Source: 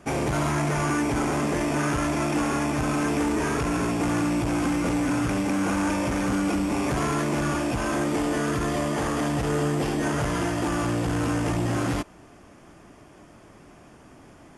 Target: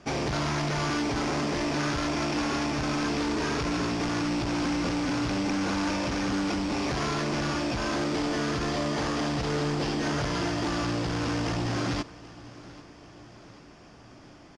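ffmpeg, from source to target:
-af "aeval=exprs='0.0841*(abs(mod(val(0)/0.0841+3,4)-2)-1)':c=same,lowpass=f=5000:t=q:w=2.7,aecho=1:1:788|1576|2364|3152:0.1|0.056|0.0314|0.0176,volume=0.75"

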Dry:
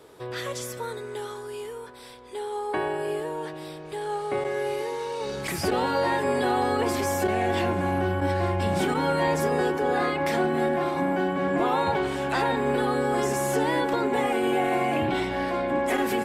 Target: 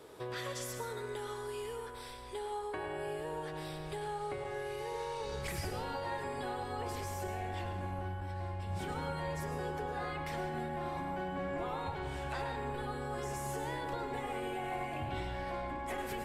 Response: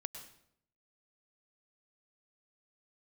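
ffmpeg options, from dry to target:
-filter_complex "[0:a]asubboost=boost=9:cutoff=74,acompressor=threshold=0.02:ratio=6[s0];[1:a]atrim=start_sample=2205[s1];[s0][s1]afir=irnorm=-1:irlink=0"

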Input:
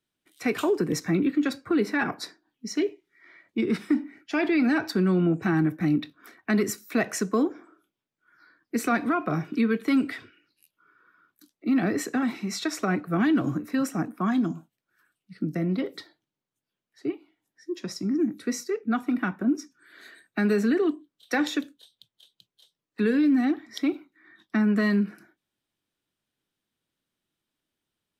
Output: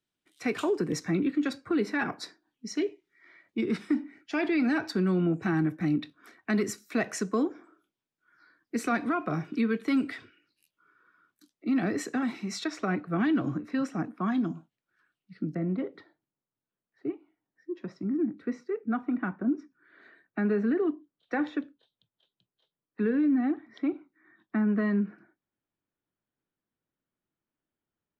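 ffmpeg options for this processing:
-af "asetnsamples=n=441:p=0,asendcmd='12.64 lowpass f 4500;15.55 lowpass f 1700',lowpass=9200,volume=0.668"

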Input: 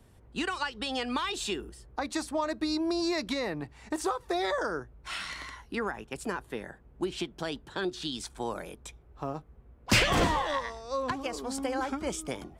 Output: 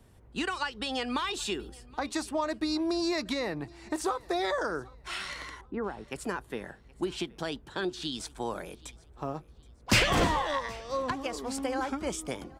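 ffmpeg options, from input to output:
-filter_complex "[0:a]asettb=1/sr,asplit=3[s0][s1][s2];[s0]atrim=end=5.614[s3];[s1]atrim=start=5.61:end=6.05,asetpts=PTS-STARTPTS,afade=t=in:d=0.004:c=qsin,afade=t=out:st=0.436:d=0.004:c=qsin,lowpass=1000[s4];[s2]atrim=start=6.046[s5];[s3][s4]acrossfade=d=0.004:c1=hsin:c2=qsin[s6];[s6][s5]acrossfade=d=0.004:c1=qsin:c2=hsin,aecho=1:1:773|1546:0.0631|0.0215"

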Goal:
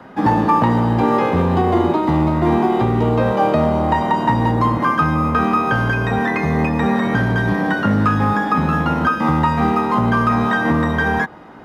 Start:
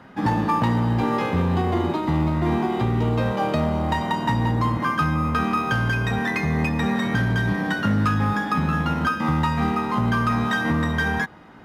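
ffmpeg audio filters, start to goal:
-filter_complex "[0:a]acrossover=split=270|1200|2800[s0][s1][s2][s3];[s1]acontrast=70[s4];[s3]alimiter=level_in=4.22:limit=0.0631:level=0:latency=1:release=96,volume=0.237[s5];[s0][s4][s2][s5]amix=inputs=4:normalize=0,volume=1.33"

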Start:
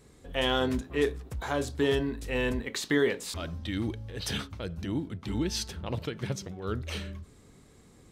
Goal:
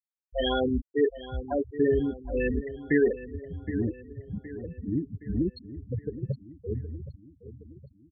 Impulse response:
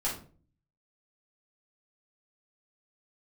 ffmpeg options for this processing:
-filter_complex "[0:a]afftfilt=real='re*gte(hypot(re,im),0.141)':imag='im*gte(hypot(re,im),0.141)':win_size=1024:overlap=0.75,asplit=2[s0][s1];[s1]adelay=768,lowpass=f=3500:p=1,volume=0.2,asplit=2[s2][s3];[s3]adelay=768,lowpass=f=3500:p=1,volume=0.54,asplit=2[s4][s5];[s5]adelay=768,lowpass=f=3500:p=1,volume=0.54,asplit=2[s6][s7];[s7]adelay=768,lowpass=f=3500:p=1,volume=0.54,asplit=2[s8][s9];[s9]adelay=768,lowpass=f=3500:p=1,volume=0.54[s10];[s0][s2][s4][s6][s8][s10]amix=inputs=6:normalize=0,volume=1.5"

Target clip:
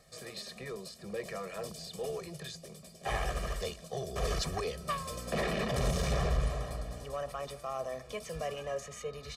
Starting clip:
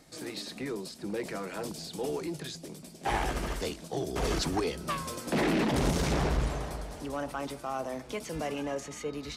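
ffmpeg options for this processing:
-filter_complex "[0:a]aecho=1:1:1.7:0.97,asettb=1/sr,asplit=3[s0][s1][s2];[s0]atrim=end=5.114[s3];[s1]atrim=start=5.11:end=7.04,asetpts=PTS-STARTPTS,afade=t=in:d=0.004:c=qsin,afade=t=out:st=1.926:d=0.004:c=qsin,aeval=exprs='val(0)+0.0126*(sin(2*PI*60*n/s)+sin(2*PI*2*60*n/s)/2+sin(2*PI*3*60*n/s)/3+sin(2*PI*4*60*n/s)/4+sin(2*PI*5*60*n/s)/5)':c=same[s4];[s2]atrim=start=7.036[s5];[s3][s4]acrossfade=d=0.004:c1=hsin:c2=qsin[s6];[s6][s5]acrossfade=d=0.004:c1=qsin:c2=hsin,volume=0.501"

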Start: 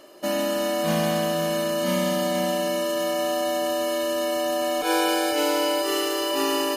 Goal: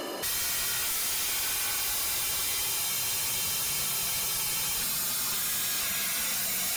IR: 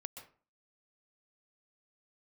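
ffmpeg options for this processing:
-af "afftfilt=real='re*lt(hypot(re,im),0.0251)':imag='im*lt(hypot(re,im),0.0251)':win_size=1024:overlap=0.75,aeval=exprs='0.0473*sin(PI/2*3.98*val(0)/0.0473)':c=same"

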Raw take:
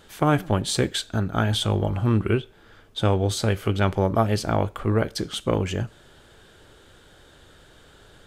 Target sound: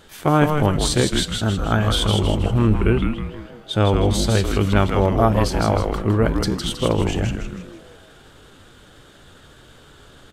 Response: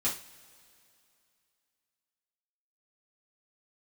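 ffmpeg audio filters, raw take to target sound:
-filter_complex "[0:a]atempo=0.8,asplit=7[s0][s1][s2][s3][s4][s5][s6];[s1]adelay=159,afreqshift=-150,volume=0.631[s7];[s2]adelay=318,afreqshift=-300,volume=0.285[s8];[s3]adelay=477,afreqshift=-450,volume=0.127[s9];[s4]adelay=636,afreqshift=-600,volume=0.0575[s10];[s5]adelay=795,afreqshift=-750,volume=0.026[s11];[s6]adelay=954,afreqshift=-900,volume=0.0116[s12];[s0][s7][s8][s9][s10][s11][s12]amix=inputs=7:normalize=0,volume=1.41"

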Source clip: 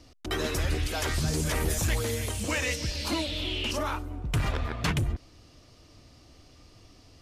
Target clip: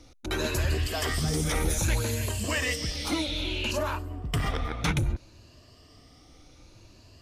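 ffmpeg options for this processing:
-af "afftfilt=real='re*pow(10,8/40*sin(2*PI*(1.4*log(max(b,1)*sr/1024/100)/log(2)-(0.62)*(pts-256)/sr)))':imag='im*pow(10,8/40*sin(2*PI*(1.4*log(max(b,1)*sr/1024/100)/log(2)-(0.62)*(pts-256)/sr)))':win_size=1024:overlap=0.75"

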